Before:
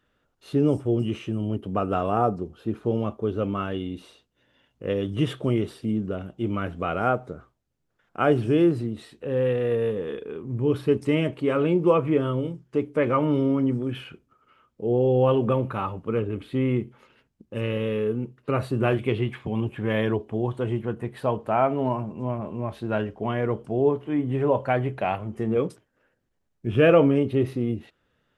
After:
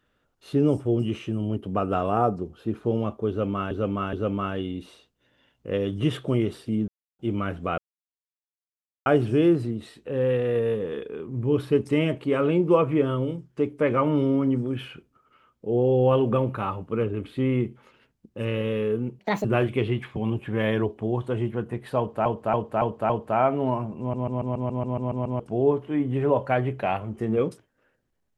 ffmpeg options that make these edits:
ffmpeg -i in.wav -filter_complex "[0:a]asplit=23[link_01][link_02][link_03][link_04][link_05][link_06][link_07][link_08][link_09][link_10][link_11][link_12][link_13][link_14][link_15][link_16][link_17][link_18][link_19][link_20][link_21][link_22][link_23];[link_01]atrim=end=3.712[link_24];[link_02]atrim=start=3.288:end=3.712[link_25];[link_03]atrim=start=3.288:end=6.04,asetpts=PTS-STARTPTS,afade=type=out:start_time=2.748:duration=0.004:curve=hsin[link_26];[link_04]atrim=start=6.04:end=6.35,asetpts=PTS-STARTPTS,volume=0[link_27];[link_05]atrim=start=6.35:end=6.94,asetpts=PTS-STARTPTS,afade=type=in:duration=0.004:curve=hsin,afade=type=out:start_time=0.586:duration=0.004:curve=hsin[link_28];[link_06]atrim=start=6.94:end=8.22,asetpts=PTS-STARTPTS,volume=0[link_29];[link_07]atrim=start=8.22:end=18.354,asetpts=PTS-STARTPTS,afade=type=in:duration=0.004:curve=hsin[link_30];[link_08]atrim=start=18.35:end=18.75,asetpts=PTS-STARTPTS,asetrate=69237,aresample=44100[link_31];[link_09]atrim=start=18.746:end=21.562[link_32];[link_10]atrim=start=21.278:end=21.562[link_33];[link_11]atrim=start=21.278:end=21.562[link_34];[link_12]atrim=start=21.278:end=21.562[link_35];[link_13]atrim=start=21.278:end=22.322[link_36];[link_14]atrim=start=22.178:end=22.322[link_37];[link_15]atrim=start=22.178:end=22.322[link_38];[link_16]atrim=start=22.178:end=22.322[link_39];[link_17]atrim=start=22.178:end=22.322[link_40];[link_18]atrim=start=22.178:end=22.322[link_41];[link_19]atrim=start=22.178:end=22.322[link_42];[link_20]atrim=start=22.178:end=22.322[link_43];[link_21]atrim=start=22.178:end=22.322[link_44];[link_22]atrim=start=22.178:end=22.322[link_45];[link_23]atrim=start=23.578[link_46];[link_24][link_25]acrossfade=duration=0.004:curve1=hsin:curve2=hsin[link_47];[link_26][link_27][link_28][link_29][link_30]concat=n=5:v=0:a=1[link_48];[link_47][link_48]acrossfade=duration=0.004:curve1=hsin:curve2=hsin[link_49];[link_49][link_31]acrossfade=duration=0.004:curve1=hsin:curve2=hsin[link_50];[link_50][link_32]acrossfade=duration=0.004:curve1=hsin:curve2=hsin[link_51];[link_51][link_33]acrossfade=duration=0.004:curve1=hsin:curve2=hsin[link_52];[link_52][link_34]acrossfade=duration=0.004:curve1=hsin:curve2=hsin[link_53];[link_53][link_35]acrossfade=duration=0.004:curve1=hsin:curve2=hsin[link_54];[link_54][link_36]acrossfade=duration=0.004:curve1=hsin:curve2=hsin[link_55];[link_55][link_37]acrossfade=duration=0.004:curve1=hsin:curve2=hsin[link_56];[link_56][link_38]acrossfade=duration=0.004:curve1=hsin:curve2=hsin[link_57];[link_57][link_39]acrossfade=duration=0.004:curve1=hsin:curve2=hsin[link_58];[link_58][link_40]acrossfade=duration=0.004:curve1=hsin:curve2=hsin[link_59];[link_59][link_41]acrossfade=duration=0.004:curve1=hsin:curve2=hsin[link_60];[link_60][link_42]acrossfade=duration=0.004:curve1=hsin:curve2=hsin[link_61];[link_61][link_43]acrossfade=duration=0.004:curve1=hsin:curve2=hsin[link_62];[link_62][link_44]acrossfade=duration=0.004:curve1=hsin:curve2=hsin[link_63];[link_63][link_45]acrossfade=duration=0.004:curve1=hsin:curve2=hsin[link_64];[link_64][link_46]acrossfade=duration=0.004:curve1=hsin:curve2=hsin" out.wav

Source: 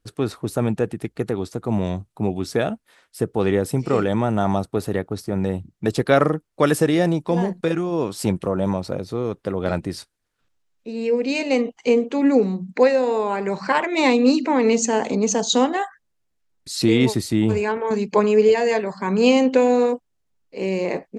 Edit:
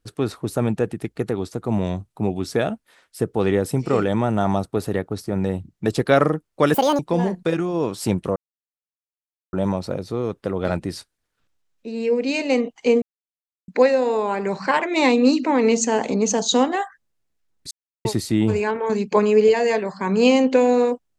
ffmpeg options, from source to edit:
ffmpeg -i in.wav -filter_complex "[0:a]asplit=8[link_01][link_02][link_03][link_04][link_05][link_06][link_07][link_08];[link_01]atrim=end=6.744[link_09];[link_02]atrim=start=6.74:end=7.17,asetpts=PTS-STARTPTS,asetrate=75852,aresample=44100[link_10];[link_03]atrim=start=7.166:end=8.54,asetpts=PTS-STARTPTS,afade=type=out:start_time=1.37:duration=0.004:curve=hsin,apad=pad_dur=1.17[link_11];[link_04]atrim=start=8.54:end=12.03,asetpts=PTS-STARTPTS,afade=type=in:duration=0.004:curve=hsin,afade=type=out:start_time=3.486:duration=0.004:curve=hsin[link_12];[link_05]atrim=start=12.03:end=12.69,asetpts=PTS-STARTPTS,volume=0[link_13];[link_06]atrim=start=12.69:end=16.72,asetpts=PTS-STARTPTS,afade=type=in:duration=0.004:curve=hsin,afade=type=out:start_time=4.026:duration=0.004:curve=hsin[link_14];[link_07]atrim=start=16.72:end=17.06,asetpts=PTS-STARTPTS,volume=0[link_15];[link_08]atrim=start=17.06,asetpts=PTS-STARTPTS,afade=type=in:duration=0.004:curve=hsin[link_16];[link_09][link_10]acrossfade=duration=0.004:curve1=hsin:curve2=hsin[link_17];[link_11][link_12][link_13][link_14][link_15][link_16]concat=n=6:v=0:a=1[link_18];[link_17][link_18]acrossfade=duration=0.004:curve1=hsin:curve2=hsin" out.wav

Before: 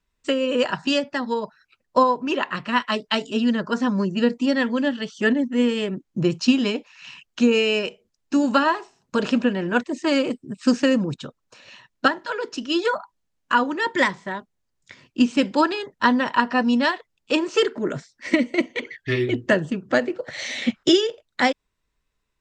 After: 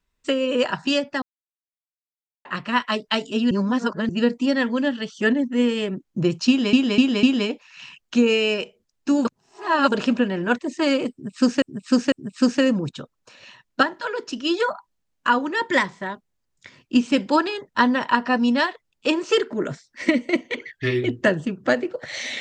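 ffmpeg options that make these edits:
ffmpeg -i in.wav -filter_complex "[0:a]asplit=12[link_01][link_02][link_03][link_04][link_05][link_06][link_07][link_08][link_09][link_10][link_11][link_12];[link_01]atrim=end=1.22,asetpts=PTS-STARTPTS,afade=type=out:start_time=1.216:duration=0.004:curve=hsin[link_13];[link_02]atrim=start=1.22:end=2.45,asetpts=PTS-STARTPTS,volume=0[link_14];[link_03]atrim=start=2.45:end=3.512,asetpts=PTS-STARTPTS,afade=type=in:duration=0.004:curve=hsin[link_15];[link_04]atrim=start=3.508:end=4.092,asetpts=PTS-STARTPTS,areverse[link_16];[link_05]atrim=start=4.088:end=6.732[link_17];[link_06]atrim=start=6.478:end=6.732[link_18];[link_07]atrim=start=6.478:end=6.732[link_19];[link_08]atrim=start=6.478:end=8.502[link_20];[link_09]atrim=start=8.498:end=9.172,asetpts=PTS-STARTPTS,areverse[link_21];[link_10]atrim=start=9.168:end=10.872[link_22];[link_11]atrim=start=10.368:end=10.872[link_23];[link_12]atrim=start=10.368[link_24];[link_13][link_14][link_15]concat=n=3:v=0:a=1[link_25];[link_25][link_16]acrossfade=duration=0.004:curve1=hsin:curve2=hsin[link_26];[link_26][link_17]acrossfade=duration=0.004:curve1=hsin:curve2=hsin[link_27];[link_27][link_18]acrossfade=duration=0.004:curve1=hsin:curve2=hsin[link_28];[link_28][link_19]acrossfade=duration=0.004:curve1=hsin:curve2=hsin[link_29];[link_29][link_20]acrossfade=duration=0.004:curve1=hsin:curve2=hsin[link_30];[link_30][link_21]acrossfade=duration=0.004:curve1=hsin:curve2=hsin[link_31];[link_31][link_22]acrossfade=duration=0.004:curve1=hsin:curve2=hsin[link_32];[link_32][link_23]acrossfade=duration=0.004:curve1=hsin:curve2=hsin[link_33];[link_33][link_24]acrossfade=duration=0.004:curve1=hsin:curve2=hsin" out.wav

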